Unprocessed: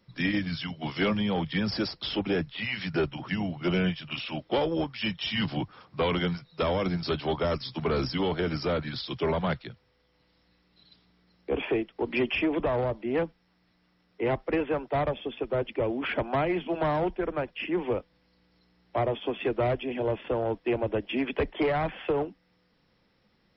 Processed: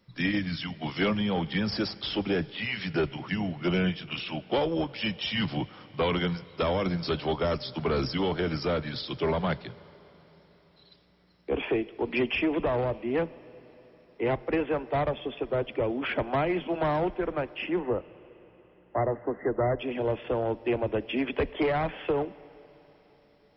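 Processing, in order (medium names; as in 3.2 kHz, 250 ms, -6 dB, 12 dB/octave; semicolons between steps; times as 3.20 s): 17.79–19.79 s: brick-wall FIR low-pass 2.1 kHz; reverberation RT60 4.1 s, pre-delay 30 ms, DRR 18.5 dB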